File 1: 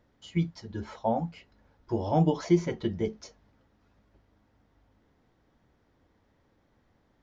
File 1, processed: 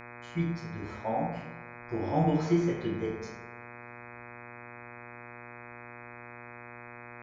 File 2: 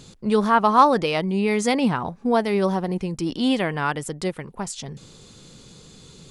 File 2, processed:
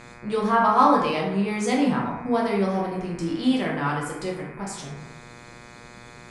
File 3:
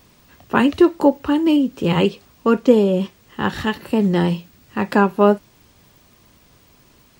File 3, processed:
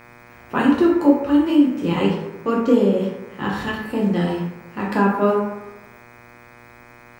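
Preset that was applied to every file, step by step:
dense smooth reverb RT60 0.96 s, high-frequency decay 0.5×, DRR −3.5 dB
hum with harmonics 120 Hz, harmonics 21, −39 dBFS −1 dB per octave
level −7.5 dB

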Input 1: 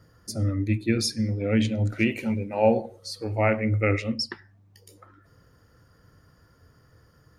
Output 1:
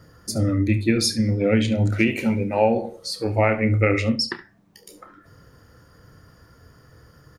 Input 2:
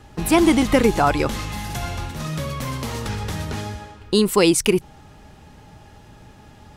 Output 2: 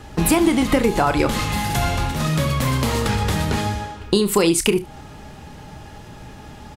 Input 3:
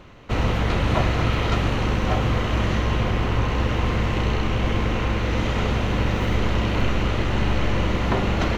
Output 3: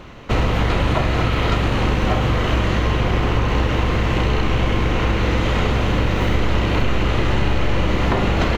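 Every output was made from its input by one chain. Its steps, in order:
mains-hum notches 50/100 Hz
dynamic equaliser 5,800 Hz, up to −4 dB, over −50 dBFS, Q 5.6
downward compressor 6 to 1, threshold −21 dBFS
ambience of single reflections 30 ms −11.5 dB, 71 ms −16.5 dB
level +7 dB

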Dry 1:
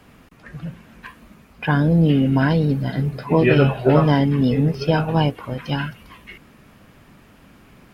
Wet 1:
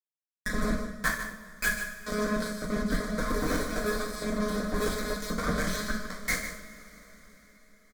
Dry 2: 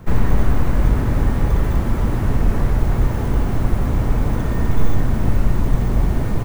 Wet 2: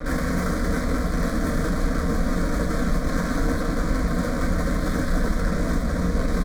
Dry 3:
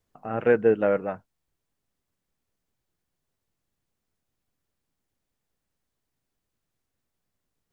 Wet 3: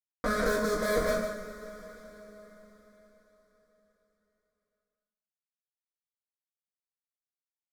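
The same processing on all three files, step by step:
high-pass filter 70 Hz 12 dB per octave
parametric band 830 Hz −11 dB 0.67 octaves
in parallel at −2 dB: downward compressor, threshold −31 dBFS
on the sum: leveller curve on the samples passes 3
one-pitch LPC vocoder at 8 kHz 210 Hz
fuzz pedal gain 27 dB, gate −27 dBFS
phaser with its sweep stopped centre 560 Hz, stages 8
single-tap delay 151 ms −10.5 dB
coupled-rooms reverb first 0.5 s, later 4.7 s, from −21 dB, DRR −2 dB
speech leveller within 4 dB 0.5 s
level −8.5 dB

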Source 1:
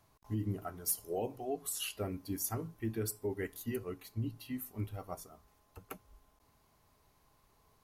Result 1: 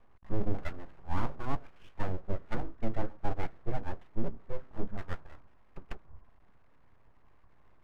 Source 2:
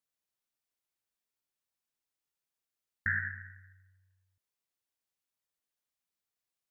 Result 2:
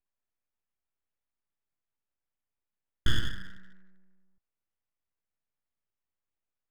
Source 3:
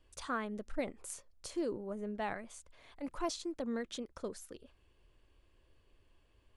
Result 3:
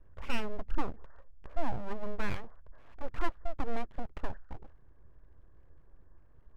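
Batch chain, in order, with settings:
Butterworth low-pass 1,800 Hz 96 dB per octave
full-wave rectification
low-shelf EQ 110 Hz +10.5 dB
level +4 dB

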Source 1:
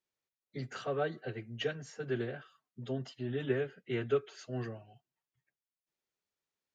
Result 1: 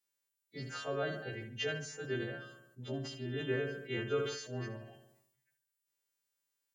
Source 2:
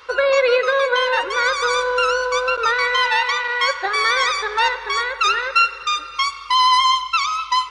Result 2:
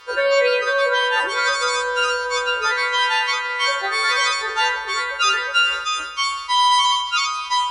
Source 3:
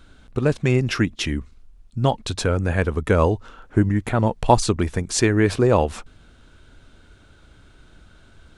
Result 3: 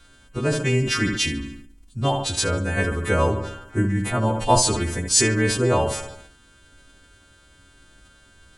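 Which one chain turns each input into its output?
every partial snapped to a pitch grid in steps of 2 semitones
feedback echo with a low-pass in the loop 72 ms, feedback 52%, low-pass 4,500 Hz, level −11 dB
level that may fall only so fast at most 63 dB per second
level −3 dB

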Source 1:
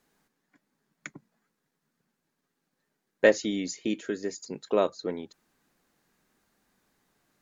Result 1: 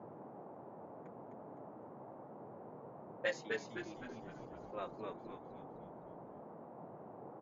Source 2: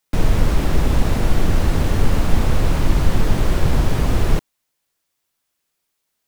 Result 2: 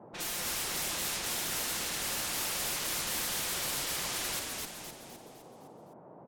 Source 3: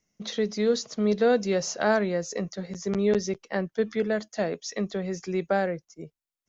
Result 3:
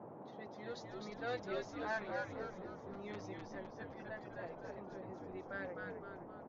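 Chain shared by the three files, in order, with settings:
low-pass that shuts in the quiet parts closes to 520 Hz, open at −9.5 dBFS
first difference
comb filter 5.7 ms, depth 89%
echo with shifted repeats 256 ms, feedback 48%, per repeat −94 Hz, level −3 dB
noise in a band 120–860 Hz −52 dBFS

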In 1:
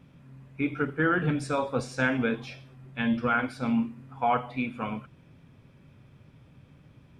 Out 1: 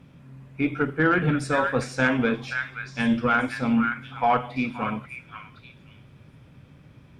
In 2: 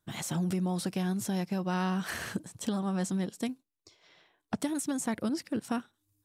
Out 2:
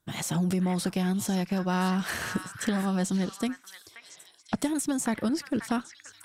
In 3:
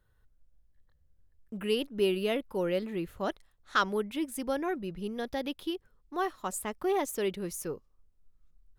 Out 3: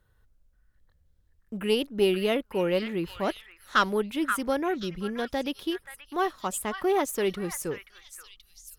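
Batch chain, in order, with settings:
echo through a band-pass that steps 529 ms, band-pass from 1,700 Hz, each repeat 1.4 octaves, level −4 dB
harmonic generator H 4 −26 dB, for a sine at −12 dBFS
level +4 dB

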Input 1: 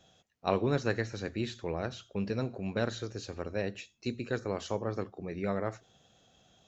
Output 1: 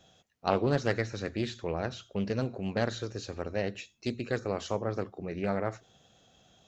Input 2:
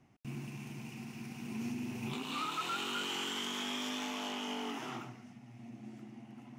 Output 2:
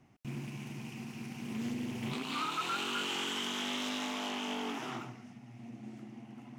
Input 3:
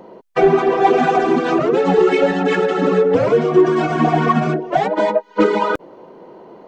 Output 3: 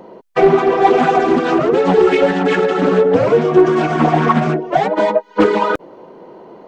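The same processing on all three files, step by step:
highs frequency-modulated by the lows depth 0.26 ms
level +2 dB

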